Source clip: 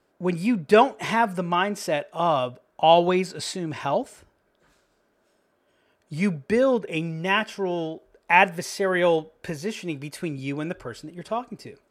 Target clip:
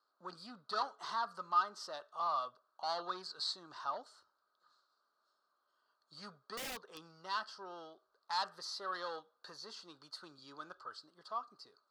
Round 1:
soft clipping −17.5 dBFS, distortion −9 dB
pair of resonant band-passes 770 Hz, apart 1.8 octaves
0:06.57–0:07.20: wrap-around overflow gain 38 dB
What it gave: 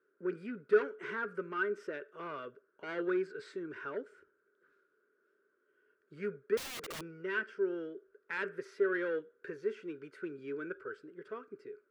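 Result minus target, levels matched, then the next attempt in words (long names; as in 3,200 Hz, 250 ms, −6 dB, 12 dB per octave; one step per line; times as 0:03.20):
1,000 Hz band −10.5 dB
soft clipping −17.5 dBFS, distortion −9 dB
pair of resonant band-passes 2,300 Hz, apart 1.8 octaves
0:06.57–0:07.20: wrap-around overflow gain 38 dB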